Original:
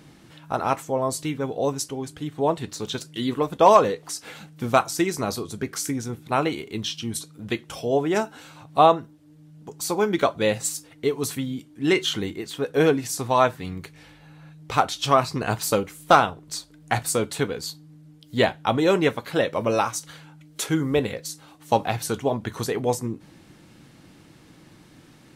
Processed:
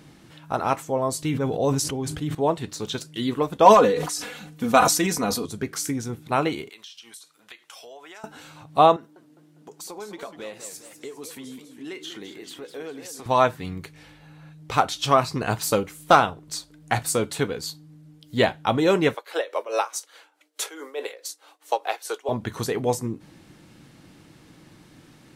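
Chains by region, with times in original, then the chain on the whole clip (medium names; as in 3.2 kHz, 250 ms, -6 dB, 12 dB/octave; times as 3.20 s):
1.22–2.35 s: bass shelf 140 Hz +7.5 dB + decay stretcher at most 41 dB/s
3.65–5.46 s: band-stop 4.8 kHz, Q 19 + comb 4.1 ms, depth 66% + decay stretcher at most 56 dB/s
6.69–8.24 s: high-pass 1 kHz + compression 8:1, threshold -40 dBFS
8.96–13.26 s: high-pass 270 Hz + compression 3:1, threshold -38 dBFS + modulated delay 202 ms, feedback 50%, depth 219 cents, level -10 dB
19.14–22.29 s: steep high-pass 390 Hz + tremolo 4.7 Hz, depth 76%
whole clip: none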